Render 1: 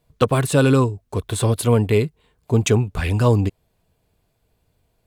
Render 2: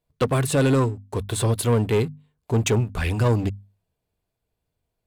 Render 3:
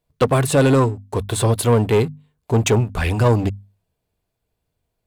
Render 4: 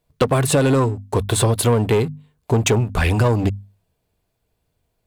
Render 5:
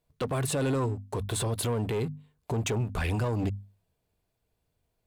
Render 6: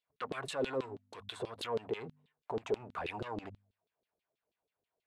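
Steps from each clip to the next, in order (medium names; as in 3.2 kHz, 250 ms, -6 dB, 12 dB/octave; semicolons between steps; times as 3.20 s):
waveshaping leveller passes 2; hum notches 50/100/150/200/250 Hz; trim -8.5 dB
dynamic bell 750 Hz, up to +4 dB, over -37 dBFS, Q 1.1; trim +3.5 dB
compression, threshold -18 dBFS, peak gain reduction 7.5 dB; trim +4.5 dB
peak limiter -15.5 dBFS, peak gain reduction 10 dB; trim -6.5 dB
LFO band-pass saw down 6.2 Hz 340–3800 Hz; trim +1.5 dB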